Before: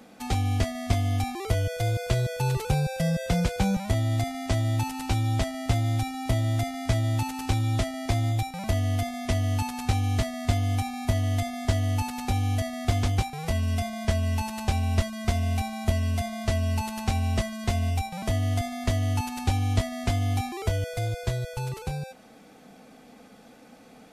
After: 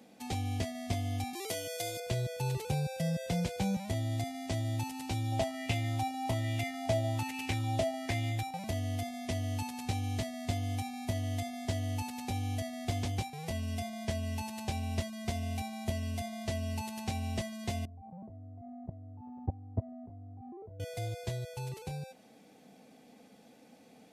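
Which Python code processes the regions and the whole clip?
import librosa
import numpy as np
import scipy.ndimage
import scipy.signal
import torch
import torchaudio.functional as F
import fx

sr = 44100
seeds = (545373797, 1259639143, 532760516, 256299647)

y = fx.chain(x, sr, fx.highpass(hz=250.0, slope=12),
    fx.peak_eq(hz=12000.0, db=9.5, octaves=2.7), at=(1.33, 2.0))
y = fx.chain(y, sr, fx.peak_eq(hz=2800.0, db=3.5, octaves=0.24),
    fx.bell_lfo(hz=1.2, low_hz=610.0, high_hz=2500.0, db=11), at=(5.32, 8.57))
y = fx.chain(y, sr, fx.lowpass(hz=1000.0, slope=24),
    fx.level_steps(step_db=21),
    fx.tilt_shelf(db=4.0, hz=760.0), at=(17.85, 20.8))
y = scipy.signal.sosfilt(scipy.signal.butter(2, 100.0, 'highpass', fs=sr, output='sos'), y)
y = fx.peak_eq(y, sr, hz=1300.0, db=-9.0, octaves=0.65)
y = y * librosa.db_to_amplitude(-6.5)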